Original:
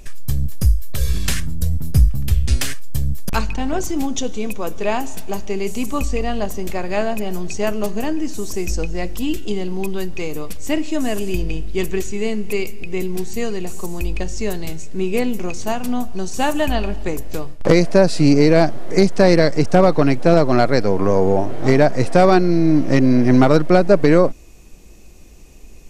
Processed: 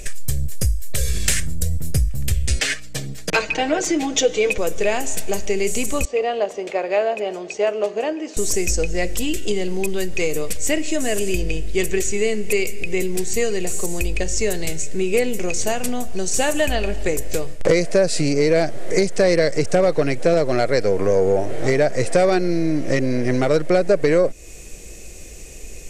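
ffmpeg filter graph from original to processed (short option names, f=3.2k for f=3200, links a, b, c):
-filter_complex "[0:a]asettb=1/sr,asplit=3[a][b][c];[a]atrim=end=2.594[d];[b]atrim=start=2.59:end=4.58,asetpts=PTS-STARTPTS,afade=t=in:d=0.004:c=qsin,afade=t=out:st=1.986:d=0.004:c=qsin,acrossover=split=210 5500:gain=0.0708 1 0.126[e][f][g];[e][f][g]amix=inputs=3:normalize=0,aeval=exprs='val(0)+0.00398*(sin(2*PI*60*n/s)+sin(2*PI*2*60*n/s)/2+sin(2*PI*3*60*n/s)/3+sin(2*PI*4*60*n/s)/4+sin(2*PI*5*60*n/s)/5)':c=same,aecho=1:1:6.4:0.88,atrim=end_sample=87759[h];[c]atrim=start=4.576[i];[d][h]acrossfade=d=0.004:c1=hsin:c2=qsin[j];[j][i]acrossfade=d=0.004:c1=qsin:c2=hsin,asettb=1/sr,asplit=3[k][l][m];[k]atrim=end=6.054[n];[l]atrim=start=6.05:end=8.37,asetpts=PTS-STARTPTS,afade=t=in:d=0.004:c=qsin,afade=t=out:st=2.316:d=0.004:c=qsin,highpass=490,lowpass=2.4k,equalizer=f=1.8k:t=o:w=0.87:g=-8.5[o];[m]atrim=start=8.366[p];[n][o]acrossfade=d=0.004:c1=hsin:c2=qsin[q];[q][p]acrossfade=d=0.004:c1=qsin:c2=hsin,acompressor=threshold=-22dB:ratio=3,equalizer=f=250:t=o:w=1:g=-5,equalizer=f=500:t=o:w=1:g=8,equalizer=f=1k:t=o:w=1:g=-7,equalizer=f=2k:t=o:w=1:g=7,equalizer=f=8k:t=o:w=1:g=11,acontrast=42,volume=-1dB"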